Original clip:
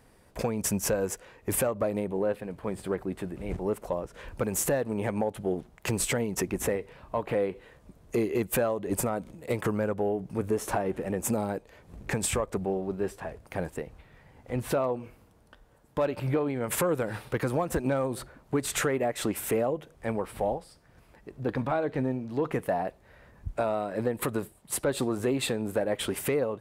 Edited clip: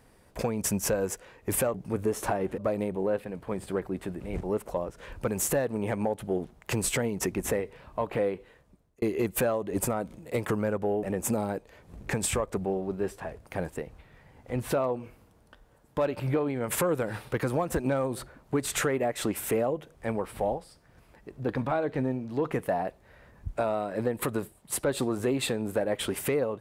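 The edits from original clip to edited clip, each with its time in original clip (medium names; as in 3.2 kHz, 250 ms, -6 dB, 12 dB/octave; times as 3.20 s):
7.39–8.18 s: fade out
10.19–11.03 s: move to 1.74 s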